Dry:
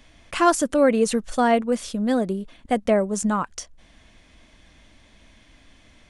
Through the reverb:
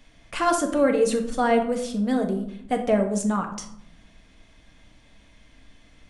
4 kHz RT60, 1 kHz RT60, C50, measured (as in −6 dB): 0.40 s, 0.70 s, 9.0 dB